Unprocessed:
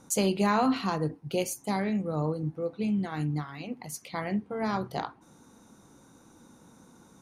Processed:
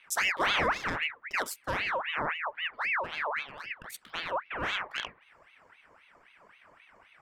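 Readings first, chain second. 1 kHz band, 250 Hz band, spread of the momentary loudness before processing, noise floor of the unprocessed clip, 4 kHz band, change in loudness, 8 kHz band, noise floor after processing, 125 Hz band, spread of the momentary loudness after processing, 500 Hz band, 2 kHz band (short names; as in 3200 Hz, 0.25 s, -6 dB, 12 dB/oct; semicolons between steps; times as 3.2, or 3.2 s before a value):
0.0 dB, -17.0 dB, 12 LU, -58 dBFS, +6.0 dB, -1.0 dB, -4.0 dB, -62 dBFS, -15.0 dB, 13 LU, -6.0 dB, +10.0 dB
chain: Wiener smoothing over 9 samples; ring modulator with a swept carrier 1600 Hz, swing 55%, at 3.8 Hz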